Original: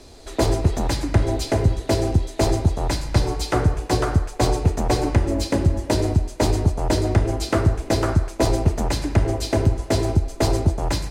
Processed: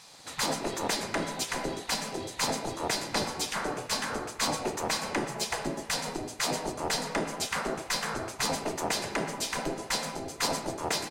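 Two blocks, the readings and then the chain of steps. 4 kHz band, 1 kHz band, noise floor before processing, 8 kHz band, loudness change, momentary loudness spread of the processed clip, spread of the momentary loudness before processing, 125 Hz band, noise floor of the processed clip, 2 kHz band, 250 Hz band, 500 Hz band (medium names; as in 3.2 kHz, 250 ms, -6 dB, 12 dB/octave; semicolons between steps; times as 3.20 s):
-0.5 dB, -5.0 dB, -38 dBFS, 0.0 dB, -9.5 dB, 3 LU, 2 LU, -23.5 dB, -46 dBFS, -0.5 dB, -12.5 dB, -10.5 dB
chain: spectral gate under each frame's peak -15 dB weak; de-hum 56.44 Hz, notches 30; speakerphone echo 120 ms, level -14 dB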